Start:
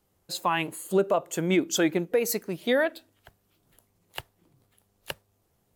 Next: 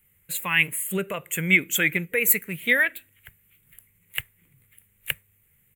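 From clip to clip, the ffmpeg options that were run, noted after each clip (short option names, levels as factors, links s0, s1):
-af "firequalizer=gain_entry='entry(150,0);entry(320,-14);entry(460,-8);entry(690,-18);entry(2100,12);entry(5000,-20);entry(7500,3);entry(15000,12)':delay=0.05:min_phase=1,volume=1.68"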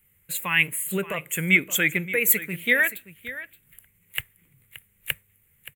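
-af "aecho=1:1:574:0.178"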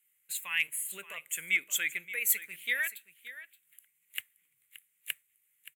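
-af "volume=2.24,asoftclip=hard,volume=0.447,bandpass=f=6500:t=q:w=0.55:csg=0,volume=0.631"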